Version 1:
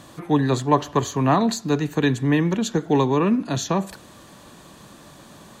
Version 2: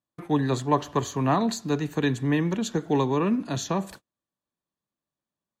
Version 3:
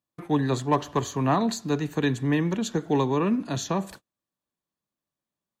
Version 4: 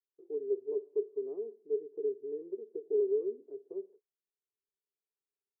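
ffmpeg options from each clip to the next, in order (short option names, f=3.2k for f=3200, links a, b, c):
-af "agate=range=-42dB:threshold=-37dB:ratio=16:detection=peak,volume=-4.5dB"
-af "asoftclip=type=hard:threshold=-13dB"
-af "asuperpass=centerf=410:order=4:qfactor=7.2"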